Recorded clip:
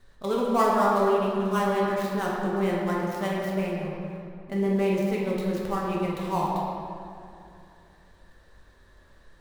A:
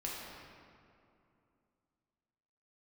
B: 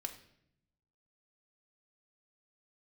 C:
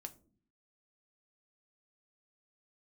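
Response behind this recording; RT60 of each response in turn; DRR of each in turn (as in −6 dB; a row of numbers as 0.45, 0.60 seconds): A; 2.6 s, 0.70 s, non-exponential decay; −5.0, 3.5, 6.5 decibels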